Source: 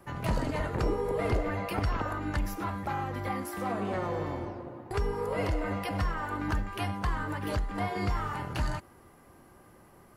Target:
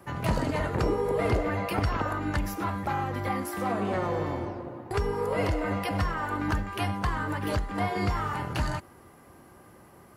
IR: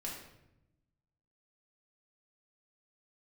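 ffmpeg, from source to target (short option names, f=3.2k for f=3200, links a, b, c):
-af "highpass=52,volume=3.5dB"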